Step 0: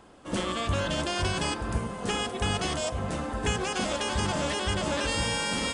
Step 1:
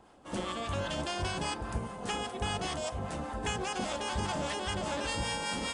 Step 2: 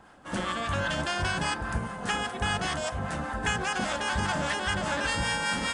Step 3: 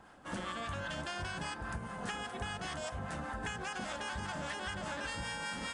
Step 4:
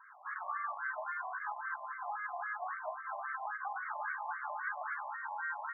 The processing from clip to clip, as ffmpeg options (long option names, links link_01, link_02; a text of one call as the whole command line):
ffmpeg -i in.wav -filter_complex "[0:a]equalizer=frequency=810:width_type=o:width=0.5:gain=5,acrossover=split=730[link_01][link_02];[link_01]aeval=exprs='val(0)*(1-0.5/2+0.5/2*cos(2*PI*5*n/s))':channel_layout=same[link_03];[link_02]aeval=exprs='val(0)*(1-0.5/2-0.5/2*cos(2*PI*5*n/s))':channel_layout=same[link_04];[link_03][link_04]amix=inputs=2:normalize=0,volume=-4dB" out.wav
ffmpeg -i in.wav -af "equalizer=frequency=160:width_type=o:width=0.67:gain=3,equalizer=frequency=400:width_type=o:width=0.67:gain=-4,equalizer=frequency=1600:width_type=o:width=0.67:gain=9,volume=3.5dB" out.wav
ffmpeg -i in.wav -af "acompressor=threshold=-33dB:ratio=6,volume=-3.5dB" out.wav
ffmpeg -i in.wav -af "lowpass=2500,afftfilt=real='re*between(b*sr/1024,800*pow(1600/800,0.5+0.5*sin(2*PI*3.7*pts/sr))/1.41,800*pow(1600/800,0.5+0.5*sin(2*PI*3.7*pts/sr))*1.41)':imag='im*between(b*sr/1024,800*pow(1600/800,0.5+0.5*sin(2*PI*3.7*pts/sr))/1.41,800*pow(1600/800,0.5+0.5*sin(2*PI*3.7*pts/sr))*1.41)':win_size=1024:overlap=0.75,volume=6dB" out.wav